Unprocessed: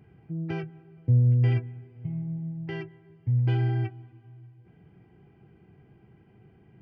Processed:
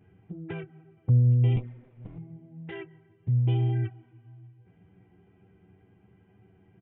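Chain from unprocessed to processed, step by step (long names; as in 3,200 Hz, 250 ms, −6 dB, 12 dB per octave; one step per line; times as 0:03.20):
0:01.56–0:02.18: lower of the sound and its delayed copy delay 6.8 ms
flanger swept by the level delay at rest 11.8 ms, full sweep at −21.5 dBFS
downsampling to 8,000 Hz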